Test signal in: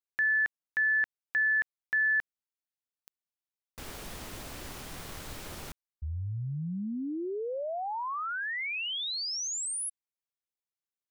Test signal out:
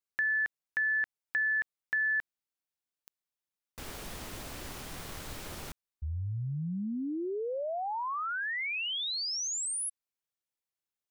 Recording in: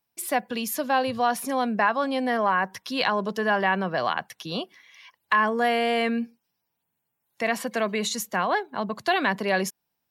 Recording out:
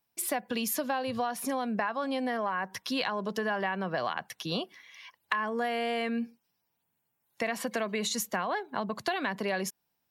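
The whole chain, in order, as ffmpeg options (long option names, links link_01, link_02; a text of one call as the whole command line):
ffmpeg -i in.wav -af "acompressor=threshold=-27dB:ratio=6:attack=10:release=376:knee=1:detection=peak" out.wav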